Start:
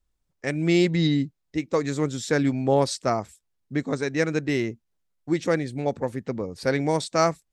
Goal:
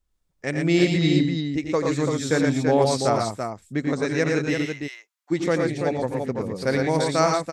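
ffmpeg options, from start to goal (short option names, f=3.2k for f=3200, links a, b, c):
-filter_complex "[0:a]asplit=3[a][b][c];[a]afade=t=out:st=4.53:d=0.02[d];[b]highpass=f=920:w=0.5412,highpass=f=920:w=1.3066,afade=t=in:st=4.53:d=0.02,afade=t=out:st=5.3:d=0.02[e];[c]afade=t=in:st=5.3:d=0.02[f];[d][e][f]amix=inputs=3:normalize=0,aecho=1:1:88|115|125|335:0.398|0.631|0.141|0.531"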